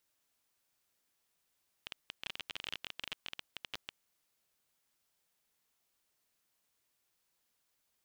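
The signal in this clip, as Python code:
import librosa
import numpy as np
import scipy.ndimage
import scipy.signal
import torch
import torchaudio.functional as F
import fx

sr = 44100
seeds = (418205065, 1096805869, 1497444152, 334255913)

y = fx.geiger_clicks(sr, seeds[0], length_s=2.21, per_s=21.0, level_db=-23.0)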